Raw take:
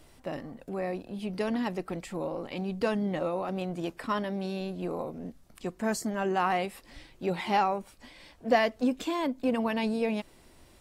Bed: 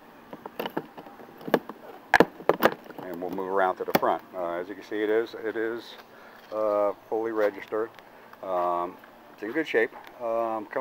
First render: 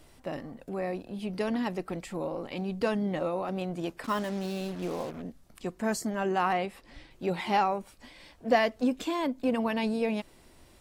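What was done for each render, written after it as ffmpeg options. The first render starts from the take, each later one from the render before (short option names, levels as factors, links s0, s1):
-filter_complex "[0:a]asettb=1/sr,asplit=3[s0][s1][s2];[s0]atrim=end=4.044[s3];[s1]atrim=start=4.04:end=5.22,asetpts=PTS-STARTPTS,afade=t=in:d=0.004:c=qsin,afade=t=out:st=1.176:d=0.004:c=qsin,acrusher=bits=6:mix=0:aa=0.5[s4];[s2]atrim=start=5.216[s5];[s3][s4]acrossfade=d=0.004:c1=hsin:c2=qsin[s6];[s6][s5]acrossfade=d=0.004:c1=qsin:c2=hsin,asettb=1/sr,asplit=3[s7][s8][s9];[s7]atrim=end=6.534[s10];[s8]atrim=start=6.53:end=7.11,asetpts=PTS-STARTPTS,afade=t=in:d=0.004:c=qsin,afade=t=out:st=0.576:d=0.004:c=qsin,lowpass=f=3900:p=1[s11];[s9]atrim=start=7.106[s12];[s10][s11]acrossfade=d=0.004:c1=hsin:c2=qsin[s13];[s13][s12]acrossfade=d=0.004:c1=qsin:c2=hsin"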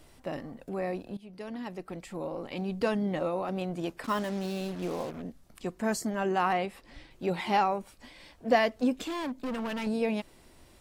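-filter_complex "[0:a]asettb=1/sr,asplit=3[s0][s1][s2];[s0]atrim=end=9.064[s3];[s1]atrim=start=9.06:end=9.87,asetpts=PTS-STARTPTS,afade=t=in:d=0.004:c=qsin,afade=t=out:st=0.806:d=0.004:c=qsin,volume=35.5,asoftclip=hard,volume=0.0282[s4];[s2]atrim=start=9.866[s5];[s3][s4]acrossfade=d=0.004:c1=hsin:c2=qsin[s6];[s6][s5]acrossfade=d=0.004:c1=qsin:c2=hsin,asplit=2[s7][s8];[s7]atrim=end=1.17,asetpts=PTS-STARTPTS,afade=t=out:st=1.166:d=0.004:c=hsin:silence=0.149624[s9];[s8]atrim=start=1.17,asetpts=PTS-STARTPTS,afade=t=in:d=1.48:silence=0.149624[s10];[s9][s10]concat=n=2:v=0:a=1"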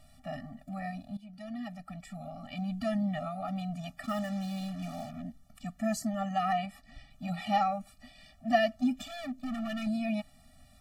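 -af "afftfilt=real='re*eq(mod(floor(b*sr/1024/280),2),0)':imag='im*eq(mod(floor(b*sr/1024/280),2),0)':win_size=1024:overlap=0.75"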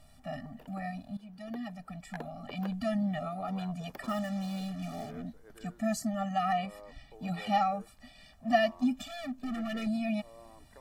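-filter_complex "[1:a]volume=0.0501[s0];[0:a][s0]amix=inputs=2:normalize=0"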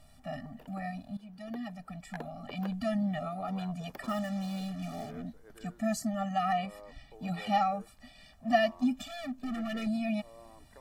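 -af anull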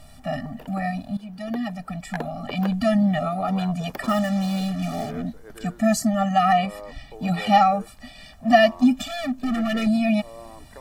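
-af "volume=3.76,alimiter=limit=0.708:level=0:latency=1"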